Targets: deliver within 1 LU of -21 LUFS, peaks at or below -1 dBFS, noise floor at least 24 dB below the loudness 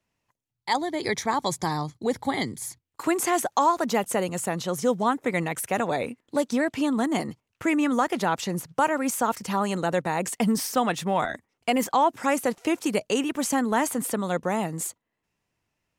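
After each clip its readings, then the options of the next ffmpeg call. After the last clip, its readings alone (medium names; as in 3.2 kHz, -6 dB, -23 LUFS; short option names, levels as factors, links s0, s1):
loudness -26.0 LUFS; peak level -10.5 dBFS; loudness target -21.0 LUFS
-> -af "volume=1.78"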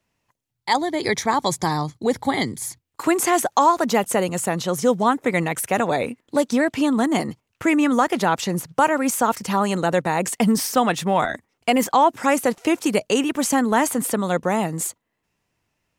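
loudness -21.0 LUFS; peak level -5.5 dBFS; noise floor -77 dBFS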